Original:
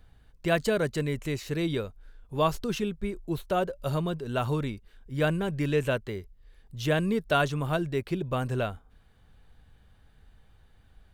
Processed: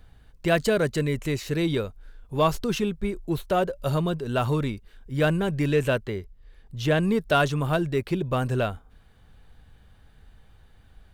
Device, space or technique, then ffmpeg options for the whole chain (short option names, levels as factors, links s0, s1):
parallel distortion: -filter_complex "[0:a]asplit=2[s0][s1];[s1]asoftclip=type=hard:threshold=0.0531,volume=0.316[s2];[s0][s2]amix=inputs=2:normalize=0,asettb=1/sr,asplit=3[s3][s4][s5];[s3]atrim=end=6.064[s6];[s4]atrim=start=6.06:end=7.03,asetpts=PTS-STARTPTS,afade=t=in:d=0.004:c=qsin,afade=t=out:st=0.966:d=0.004:c=qsin,highshelf=f=5600:g=-6.5[s7];[s5]atrim=start=7.026[s8];[s6][s7]acrossfade=d=0.004:c1=hsin:c2=qsin[s9];[s9][s8]acrossfade=d=0.004:c1=qsin:c2=hsin,volume=1.26"